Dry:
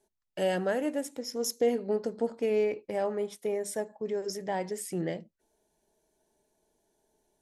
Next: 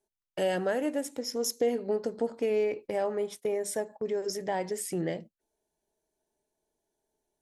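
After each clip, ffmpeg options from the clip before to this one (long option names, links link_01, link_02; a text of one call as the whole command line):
ffmpeg -i in.wav -af "agate=range=-12dB:threshold=-46dB:ratio=16:detection=peak,equalizer=frequency=200:width=5.4:gain=-4,acompressor=threshold=-34dB:ratio=1.5,volume=3.5dB" out.wav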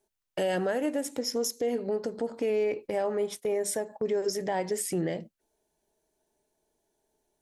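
ffmpeg -i in.wav -af "alimiter=level_in=2dB:limit=-24dB:level=0:latency=1:release=172,volume=-2dB,volume=5.5dB" out.wav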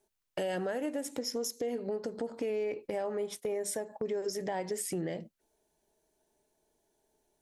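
ffmpeg -i in.wav -af "acompressor=threshold=-37dB:ratio=2,volume=1dB" out.wav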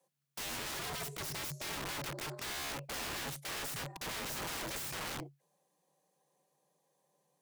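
ffmpeg -i in.wav -af "aeval=exprs='0.1*(cos(1*acos(clip(val(0)/0.1,-1,1)))-cos(1*PI/2))+0.00891*(cos(3*acos(clip(val(0)/0.1,-1,1)))-cos(3*PI/2))+0.01*(cos(8*acos(clip(val(0)/0.1,-1,1)))-cos(8*PI/2))':channel_layout=same,afreqshift=140,aeval=exprs='(mod(66.8*val(0)+1,2)-1)/66.8':channel_layout=same,volume=1dB" out.wav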